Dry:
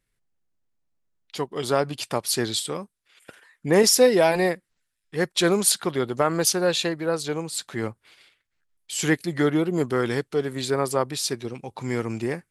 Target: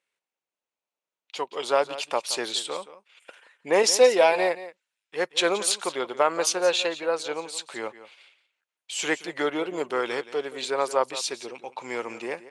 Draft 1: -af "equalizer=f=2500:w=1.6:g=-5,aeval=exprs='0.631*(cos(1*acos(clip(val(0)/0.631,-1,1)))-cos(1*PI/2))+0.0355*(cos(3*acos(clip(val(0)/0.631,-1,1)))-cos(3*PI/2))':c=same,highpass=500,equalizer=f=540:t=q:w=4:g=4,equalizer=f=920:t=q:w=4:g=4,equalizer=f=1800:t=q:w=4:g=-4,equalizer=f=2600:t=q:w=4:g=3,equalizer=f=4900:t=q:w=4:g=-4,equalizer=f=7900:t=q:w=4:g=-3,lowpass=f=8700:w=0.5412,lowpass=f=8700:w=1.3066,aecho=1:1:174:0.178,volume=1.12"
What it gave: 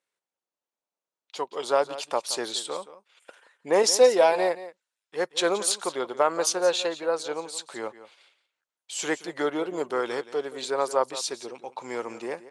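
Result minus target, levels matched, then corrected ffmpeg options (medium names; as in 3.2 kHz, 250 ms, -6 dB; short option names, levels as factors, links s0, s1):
2 kHz band -3.0 dB
-af "equalizer=f=2500:w=1.6:g=2.5,aeval=exprs='0.631*(cos(1*acos(clip(val(0)/0.631,-1,1)))-cos(1*PI/2))+0.0355*(cos(3*acos(clip(val(0)/0.631,-1,1)))-cos(3*PI/2))':c=same,highpass=500,equalizer=f=540:t=q:w=4:g=4,equalizer=f=920:t=q:w=4:g=4,equalizer=f=1800:t=q:w=4:g=-4,equalizer=f=2600:t=q:w=4:g=3,equalizer=f=4900:t=q:w=4:g=-4,equalizer=f=7900:t=q:w=4:g=-3,lowpass=f=8700:w=0.5412,lowpass=f=8700:w=1.3066,aecho=1:1:174:0.178,volume=1.12"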